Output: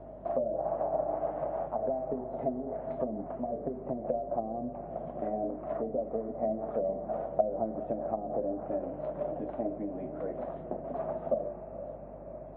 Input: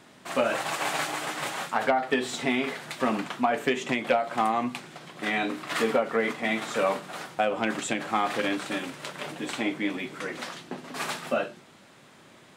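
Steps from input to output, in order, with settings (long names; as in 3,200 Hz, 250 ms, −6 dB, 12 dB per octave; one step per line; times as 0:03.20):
treble cut that deepens with the level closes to 350 Hz, closed at −22 dBFS
low-shelf EQ 120 Hz +10.5 dB
downward compressor 2.5 to 1, threshold −41 dBFS, peak gain reduction 13.5 dB
mains hum 50 Hz, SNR 13 dB
low-pass with resonance 640 Hz, resonance Q 8
on a send: feedback delay with all-pass diffusion 483 ms, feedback 49%, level −11 dB
on the sum: MP3 24 kbit/s 16,000 Hz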